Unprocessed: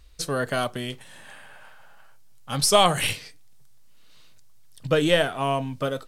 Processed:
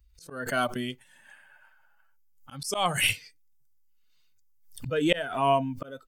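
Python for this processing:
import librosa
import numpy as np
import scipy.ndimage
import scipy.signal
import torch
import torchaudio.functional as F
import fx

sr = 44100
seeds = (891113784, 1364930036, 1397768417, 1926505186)

y = fx.bin_expand(x, sr, power=1.5)
y = fx.auto_swell(y, sr, attack_ms=348.0)
y = fx.low_shelf(y, sr, hz=130.0, db=-11.0)
y = fx.notch(y, sr, hz=3900.0, q=5.8)
y = fx.pre_swell(y, sr, db_per_s=100.0)
y = y * 10.0 ** (5.5 / 20.0)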